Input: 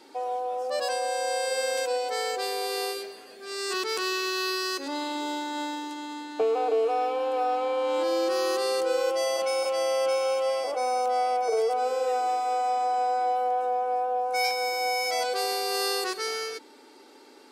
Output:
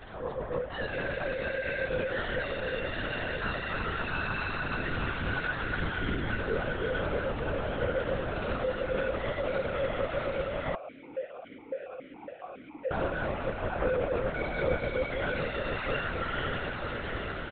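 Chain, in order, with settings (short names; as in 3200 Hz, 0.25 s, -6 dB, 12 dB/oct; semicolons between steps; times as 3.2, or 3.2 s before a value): bell 1600 Hz +12 dB 0.49 oct; comb 6.1 ms, depth 91%; limiter -32.5 dBFS, peak gain reduction 20.5 dB; AGC gain up to 7 dB; soft clip -32 dBFS, distortion -14 dB; chorus 0.72 Hz, delay 18 ms, depth 6.6 ms; diffused feedback echo 0.81 s, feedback 65%, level -5 dB; LPC vocoder at 8 kHz whisper; 10.75–12.91 vowel sequencer 7.2 Hz; gain +6 dB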